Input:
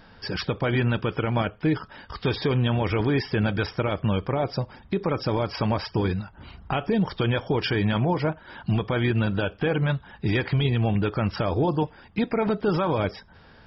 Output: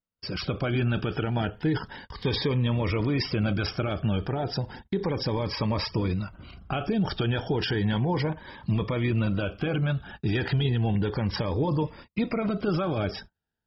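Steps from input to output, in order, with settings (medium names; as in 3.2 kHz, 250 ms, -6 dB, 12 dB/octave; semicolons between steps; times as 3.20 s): gate -44 dBFS, range -41 dB; transient shaper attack +1 dB, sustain +8 dB; Shepard-style phaser rising 0.33 Hz; trim -2.5 dB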